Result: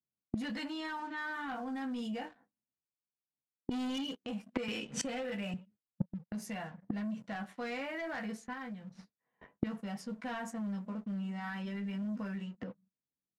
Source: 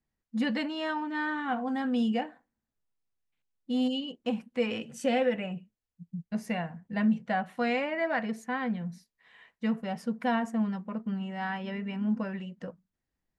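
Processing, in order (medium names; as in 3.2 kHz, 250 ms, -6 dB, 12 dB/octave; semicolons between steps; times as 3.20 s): gate with hold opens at -46 dBFS; high-pass 190 Hz 12 dB/octave; tone controls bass +9 dB, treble +10 dB; early reflections 15 ms -4 dB, 25 ms -10 dB; 3.71–4.15 s: waveshaping leveller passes 2; dynamic bell 1.4 kHz, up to +5 dB, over -41 dBFS, Q 0.88; waveshaping leveller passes 2; level-controlled noise filter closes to 660 Hz, open at -18 dBFS; 8.53–9.67 s: compression 4:1, threshold -27 dBFS, peak gain reduction 9.5 dB; peak limiter -18.5 dBFS, peak gain reduction 7.5 dB; inverted gate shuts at -30 dBFS, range -25 dB; 4.68–5.54 s: three bands compressed up and down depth 70%; trim +10 dB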